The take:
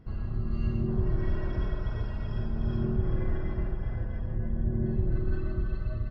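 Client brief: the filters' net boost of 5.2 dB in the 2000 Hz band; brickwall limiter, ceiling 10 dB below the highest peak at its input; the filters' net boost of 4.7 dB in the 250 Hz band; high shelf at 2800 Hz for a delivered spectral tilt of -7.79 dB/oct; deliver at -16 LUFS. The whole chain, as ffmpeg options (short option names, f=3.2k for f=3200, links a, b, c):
-af "equalizer=f=250:t=o:g=6,equalizer=f=2k:t=o:g=4.5,highshelf=f=2.8k:g=6,volume=19dB,alimiter=limit=-5.5dB:level=0:latency=1"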